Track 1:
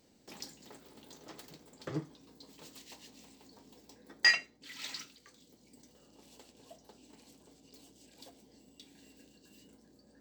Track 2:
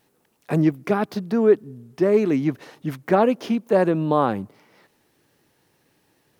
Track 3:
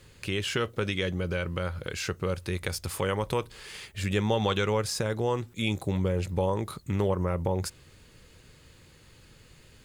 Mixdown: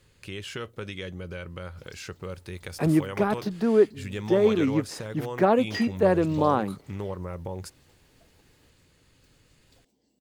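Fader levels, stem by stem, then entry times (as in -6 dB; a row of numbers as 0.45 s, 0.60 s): -10.5 dB, -3.0 dB, -7.0 dB; 1.50 s, 2.30 s, 0.00 s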